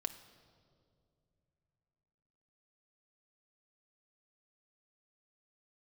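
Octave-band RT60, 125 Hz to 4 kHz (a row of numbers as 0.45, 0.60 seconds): 3.9, 3.2, 2.9, 2.0, 1.4, 1.5 seconds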